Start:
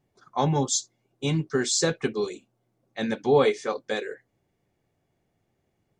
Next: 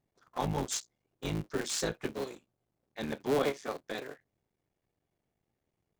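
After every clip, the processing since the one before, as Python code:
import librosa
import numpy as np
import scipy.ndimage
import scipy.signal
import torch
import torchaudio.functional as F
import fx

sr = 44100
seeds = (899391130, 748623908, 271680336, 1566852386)

y = fx.cycle_switch(x, sr, every=3, mode='muted')
y = y * 10.0 ** (-7.5 / 20.0)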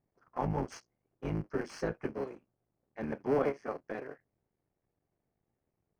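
y = scipy.signal.lfilter(np.full(12, 1.0 / 12), 1.0, x)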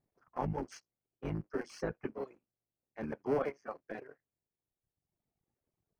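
y = fx.dereverb_blind(x, sr, rt60_s=1.4)
y = y * 10.0 ** (-2.0 / 20.0)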